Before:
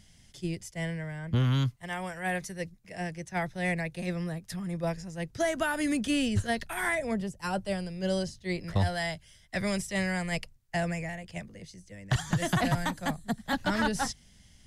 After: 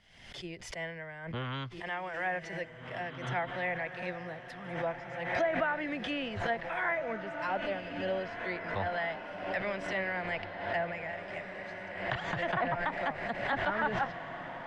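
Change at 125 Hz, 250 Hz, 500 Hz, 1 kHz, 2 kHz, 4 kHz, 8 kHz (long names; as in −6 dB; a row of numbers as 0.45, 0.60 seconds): −12.0 dB, −9.5 dB, −0.5 dB, +1.0 dB, 0.0 dB, −5.5 dB, below −15 dB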